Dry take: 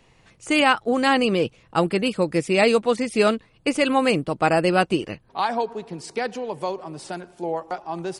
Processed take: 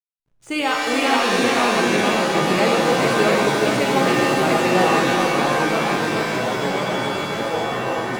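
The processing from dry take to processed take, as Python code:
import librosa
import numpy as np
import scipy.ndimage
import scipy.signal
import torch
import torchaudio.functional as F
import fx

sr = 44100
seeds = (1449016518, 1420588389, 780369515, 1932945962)

y = fx.backlash(x, sr, play_db=-39.0)
y = fx.echo_pitch(y, sr, ms=380, semitones=-2, count=3, db_per_echo=-3.0)
y = y + 10.0 ** (-3.5 / 20.0) * np.pad(y, (int(424 * sr / 1000.0), 0))[:len(y)]
y = fx.rev_shimmer(y, sr, seeds[0], rt60_s=1.6, semitones=7, shimmer_db=-2, drr_db=1.0)
y = F.gain(torch.from_numpy(y), -5.5).numpy()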